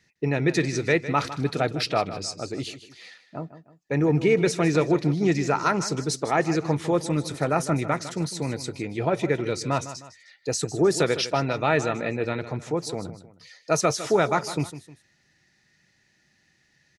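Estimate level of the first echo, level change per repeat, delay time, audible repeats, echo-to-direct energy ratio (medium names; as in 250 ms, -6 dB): -13.5 dB, -8.0 dB, 155 ms, 2, -13.0 dB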